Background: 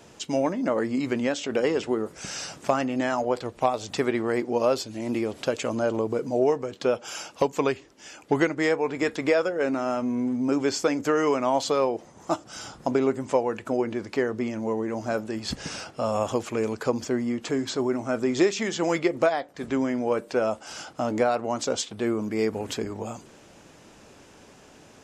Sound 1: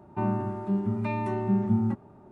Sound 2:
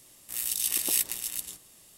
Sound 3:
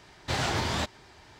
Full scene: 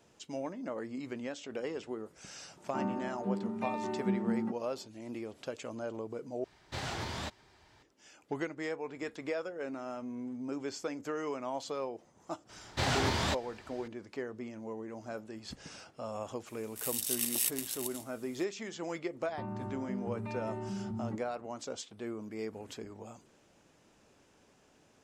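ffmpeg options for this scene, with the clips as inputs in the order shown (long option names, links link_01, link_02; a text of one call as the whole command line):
ffmpeg -i bed.wav -i cue0.wav -i cue1.wav -i cue2.wav -filter_complex "[1:a]asplit=2[link_01][link_02];[3:a]asplit=2[link_03][link_04];[0:a]volume=-14dB[link_05];[link_01]highpass=frequency=180:width=0.5412,highpass=frequency=180:width=1.3066[link_06];[2:a]highpass=57[link_07];[link_02]alimiter=limit=-24dB:level=0:latency=1:release=51[link_08];[link_05]asplit=2[link_09][link_10];[link_09]atrim=end=6.444[link_11];[link_03]atrim=end=1.39,asetpts=PTS-STARTPTS,volume=-9.5dB[link_12];[link_10]atrim=start=7.826[link_13];[link_06]atrim=end=2.31,asetpts=PTS-STARTPTS,volume=-6dB,afade=type=in:duration=0.004:curve=hsin,afade=type=out:start_time=2.306:duration=0.004:curve=hsin,adelay=2570[link_14];[link_04]atrim=end=1.39,asetpts=PTS-STARTPTS,volume=-2dB,afade=type=in:duration=0.004:curve=hsin,afade=type=out:start_time=1.386:duration=0.004:curve=hsin,adelay=12490[link_15];[link_07]atrim=end=1.97,asetpts=PTS-STARTPTS,volume=-5.5dB,afade=type=in:duration=0.004:curve=hsin,afade=type=out:start_time=1.966:duration=0.004:curve=hsin,adelay=16470[link_16];[link_08]atrim=end=2.31,asetpts=PTS-STARTPTS,volume=-8dB,afade=type=in:duration=0.004:curve=hsin,afade=type=out:start_time=2.306:duration=0.004:curve=hsin,adelay=19210[link_17];[link_11][link_12]acrossfade=duration=0.004:curve1=hsin:curve2=hsin[link_18];[link_18][link_13]acrossfade=duration=0.004:curve1=hsin:curve2=hsin[link_19];[link_19][link_14][link_15][link_16][link_17]amix=inputs=5:normalize=0" out.wav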